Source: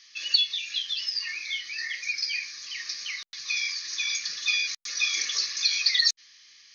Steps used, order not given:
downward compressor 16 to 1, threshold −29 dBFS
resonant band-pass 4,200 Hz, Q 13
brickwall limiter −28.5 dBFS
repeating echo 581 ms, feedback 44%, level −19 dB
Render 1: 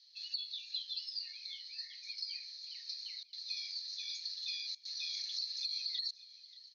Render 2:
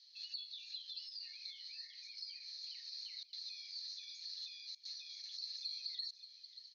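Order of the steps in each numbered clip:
resonant band-pass, then downward compressor, then brickwall limiter, then repeating echo
downward compressor, then repeating echo, then brickwall limiter, then resonant band-pass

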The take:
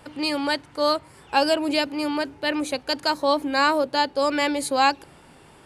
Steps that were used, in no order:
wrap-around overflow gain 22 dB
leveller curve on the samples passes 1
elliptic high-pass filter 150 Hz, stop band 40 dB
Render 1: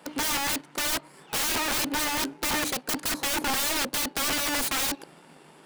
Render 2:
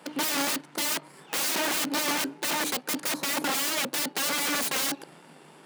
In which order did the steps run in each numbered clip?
elliptic high-pass filter, then leveller curve on the samples, then wrap-around overflow
leveller curve on the samples, then wrap-around overflow, then elliptic high-pass filter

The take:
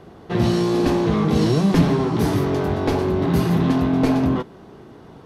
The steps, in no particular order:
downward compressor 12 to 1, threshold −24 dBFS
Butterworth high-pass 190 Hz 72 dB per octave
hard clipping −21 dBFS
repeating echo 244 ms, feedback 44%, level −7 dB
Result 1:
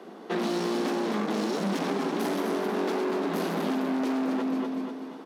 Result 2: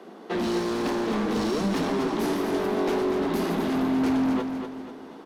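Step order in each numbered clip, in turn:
repeating echo, then hard clipping, then Butterworth high-pass, then downward compressor
Butterworth high-pass, then hard clipping, then downward compressor, then repeating echo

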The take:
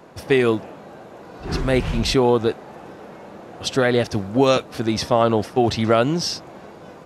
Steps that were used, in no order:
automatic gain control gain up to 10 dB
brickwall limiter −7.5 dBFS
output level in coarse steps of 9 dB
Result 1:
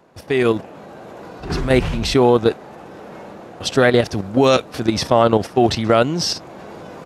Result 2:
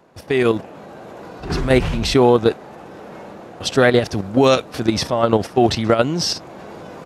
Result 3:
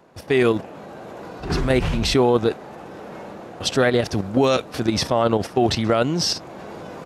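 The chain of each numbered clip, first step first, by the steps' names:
output level in coarse steps, then brickwall limiter, then automatic gain control
brickwall limiter, then output level in coarse steps, then automatic gain control
output level in coarse steps, then automatic gain control, then brickwall limiter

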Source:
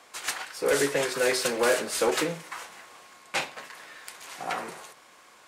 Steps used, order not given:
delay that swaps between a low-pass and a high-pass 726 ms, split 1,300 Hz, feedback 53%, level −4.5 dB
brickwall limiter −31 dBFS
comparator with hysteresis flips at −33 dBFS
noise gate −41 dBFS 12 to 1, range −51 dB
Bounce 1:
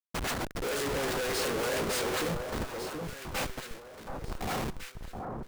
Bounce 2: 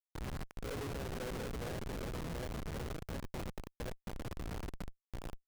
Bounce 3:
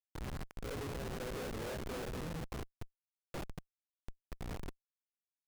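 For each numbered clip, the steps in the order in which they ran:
comparator with hysteresis, then brickwall limiter, then noise gate, then delay that swaps between a low-pass and a high-pass
noise gate, then delay that swaps between a low-pass and a high-pass, then brickwall limiter, then comparator with hysteresis
noise gate, then brickwall limiter, then delay that swaps between a low-pass and a high-pass, then comparator with hysteresis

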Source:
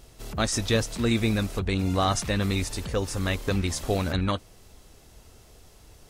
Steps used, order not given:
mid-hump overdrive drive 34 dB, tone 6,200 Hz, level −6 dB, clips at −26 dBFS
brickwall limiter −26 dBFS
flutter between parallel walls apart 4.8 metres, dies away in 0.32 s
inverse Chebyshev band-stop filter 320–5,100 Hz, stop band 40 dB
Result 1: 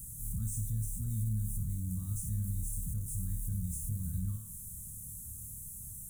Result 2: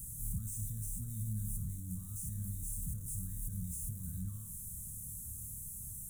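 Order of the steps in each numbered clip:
flutter between parallel walls, then mid-hump overdrive, then inverse Chebyshev band-stop filter, then brickwall limiter
flutter between parallel walls, then brickwall limiter, then mid-hump overdrive, then inverse Chebyshev band-stop filter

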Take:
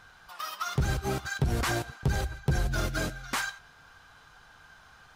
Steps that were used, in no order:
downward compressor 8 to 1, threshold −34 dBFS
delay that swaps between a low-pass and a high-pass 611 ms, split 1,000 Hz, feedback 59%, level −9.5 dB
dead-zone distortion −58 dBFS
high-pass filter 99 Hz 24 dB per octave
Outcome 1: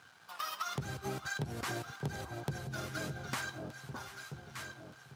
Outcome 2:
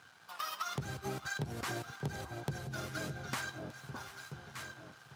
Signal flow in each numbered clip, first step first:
dead-zone distortion, then delay that swaps between a low-pass and a high-pass, then downward compressor, then high-pass filter
delay that swaps between a low-pass and a high-pass, then downward compressor, then dead-zone distortion, then high-pass filter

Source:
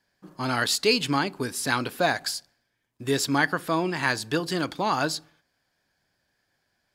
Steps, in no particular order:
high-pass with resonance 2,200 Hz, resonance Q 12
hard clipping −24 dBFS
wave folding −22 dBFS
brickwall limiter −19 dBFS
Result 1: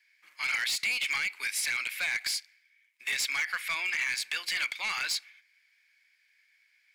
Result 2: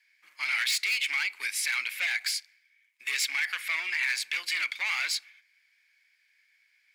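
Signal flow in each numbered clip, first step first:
high-pass with resonance, then brickwall limiter, then wave folding, then hard clipping
hard clipping, then wave folding, then high-pass with resonance, then brickwall limiter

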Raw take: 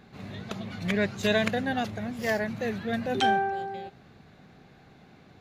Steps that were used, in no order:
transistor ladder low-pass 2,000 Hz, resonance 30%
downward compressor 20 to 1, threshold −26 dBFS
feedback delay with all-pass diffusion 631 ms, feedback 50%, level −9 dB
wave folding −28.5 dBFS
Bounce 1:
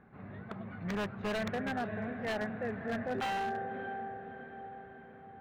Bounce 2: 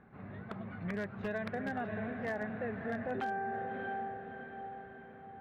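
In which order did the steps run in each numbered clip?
transistor ladder low-pass, then downward compressor, then feedback delay with all-pass diffusion, then wave folding
feedback delay with all-pass diffusion, then downward compressor, then transistor ladder low-pass, then wave folding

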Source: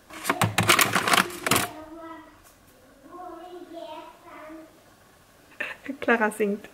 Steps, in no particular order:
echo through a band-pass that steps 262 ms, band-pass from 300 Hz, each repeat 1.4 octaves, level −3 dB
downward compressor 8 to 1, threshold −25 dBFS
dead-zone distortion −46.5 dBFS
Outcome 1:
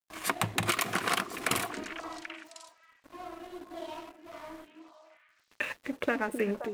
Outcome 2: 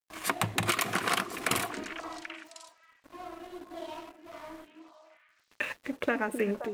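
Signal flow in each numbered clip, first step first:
downward compressor, then dead-zone distortion, then echo through a band-pass that steps
dead-zone distortion, then downward compressor, then echo through a band-pass that steps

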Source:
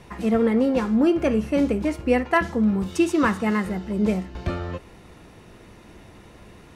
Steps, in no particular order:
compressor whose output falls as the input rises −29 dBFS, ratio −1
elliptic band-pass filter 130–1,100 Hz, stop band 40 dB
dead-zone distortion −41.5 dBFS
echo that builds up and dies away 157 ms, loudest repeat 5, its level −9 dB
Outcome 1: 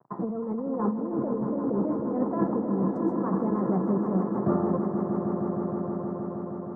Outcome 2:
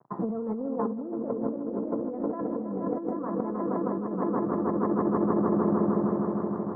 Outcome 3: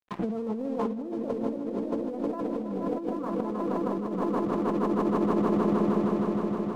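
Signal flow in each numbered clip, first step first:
dead-zone distortion, then elliptic band-pass filter, then compressor whose output falls as the input rises, then echo that builds up and dies away
echo that builds up and dies away, then dead-zone distortion, then elliptic band-pass filter, then compressor whose output falls as the input rises
elliptic band-pass filter, then dead-zone distortion, then echo that builds up and dies away, then compressor whose output falls as the input rises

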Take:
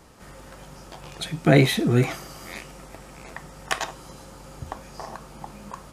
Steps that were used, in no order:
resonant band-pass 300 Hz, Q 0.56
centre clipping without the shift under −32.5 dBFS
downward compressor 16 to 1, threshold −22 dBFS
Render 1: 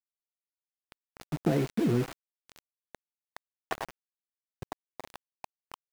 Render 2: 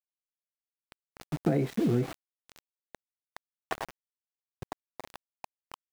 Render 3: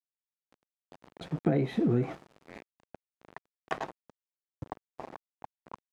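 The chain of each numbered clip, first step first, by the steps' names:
resonant band-pass, then downward compressor, then centre clipping without the shift
resonant band-pass, then centre clipping without the shift, then downward compressor
centre clipping without the shift, then resonant band-pass, then downward compressor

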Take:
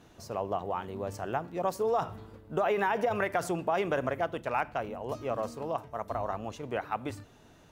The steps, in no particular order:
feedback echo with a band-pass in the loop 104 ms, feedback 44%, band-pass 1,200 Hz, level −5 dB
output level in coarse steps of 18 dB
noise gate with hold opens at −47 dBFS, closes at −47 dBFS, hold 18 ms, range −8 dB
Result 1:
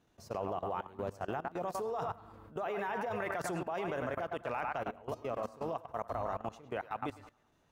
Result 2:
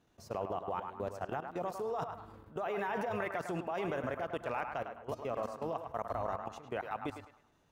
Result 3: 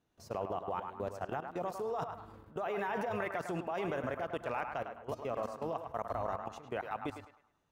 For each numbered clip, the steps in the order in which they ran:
noise gate with hold, then feedback echo with a band-pass in the loop, then output level in coarse steps
noise gate with hold, then output level in coarse steps, then feedback echo with a band-pass in the loop
output level in coarse steps, then noise gate with hold, then feedback echo with a band-pass in the loop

